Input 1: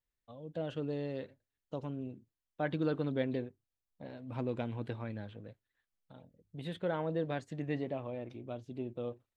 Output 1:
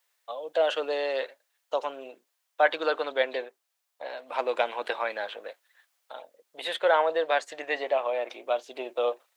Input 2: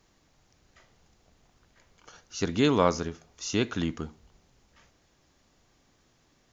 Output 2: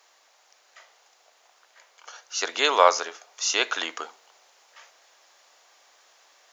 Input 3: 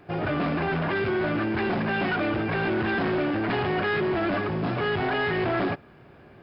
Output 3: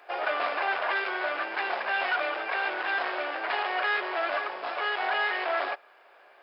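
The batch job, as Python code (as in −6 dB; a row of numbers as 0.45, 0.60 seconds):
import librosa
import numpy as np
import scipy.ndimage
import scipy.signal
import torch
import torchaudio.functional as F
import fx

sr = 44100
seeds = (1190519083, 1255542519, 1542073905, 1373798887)

y = scipy.signal.sosfilt(scipy.signal.butter(4, 590.0, 'highpass', fs=sr, output='sos'), x)
y = fx.rider(y, sr, range_db=5, speed_s=2.0)
y = y * 10.0 ** (-30 / 20.0) / np.sqrt(np.mean(np.square(y)))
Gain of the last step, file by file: +16.0, +9.5, +1.0 decibels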